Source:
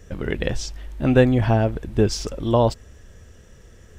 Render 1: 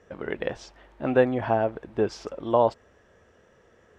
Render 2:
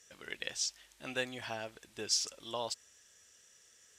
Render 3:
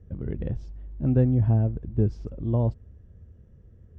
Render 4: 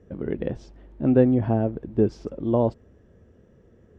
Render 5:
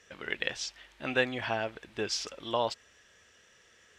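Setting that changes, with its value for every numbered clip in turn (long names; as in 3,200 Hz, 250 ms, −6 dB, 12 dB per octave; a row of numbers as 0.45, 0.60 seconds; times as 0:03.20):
resonant band-pass, frequency: 850, 7,300, 100, 280, 2,800 Hertz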